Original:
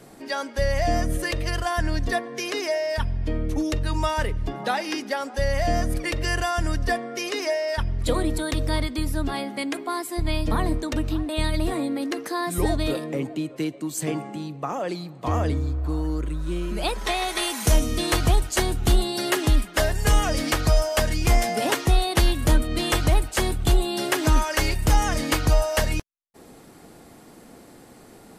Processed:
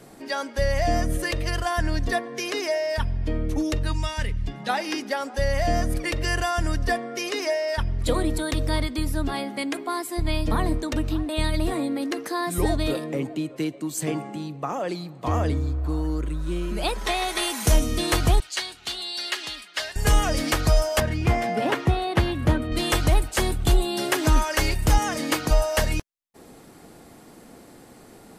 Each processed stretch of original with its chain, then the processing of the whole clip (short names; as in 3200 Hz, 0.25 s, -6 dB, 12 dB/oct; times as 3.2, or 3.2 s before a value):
3.92–4.69 LPF 10000 Hz + band shelf 650 Hz -9 dB 2.5 oct
18.4–19.96 band-pass 3300 Hz, Q 0.91 + bell 4400 Hz +4.5 dB 0.28 oct
21–22.72 HPF 66 Hz 24 dB/oct + tone controls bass +3 dB, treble -15 dB
24.98–25.51 Chebyshev high-pass 210 Hz + short-mantissa float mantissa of 6-bit
whole clip: dry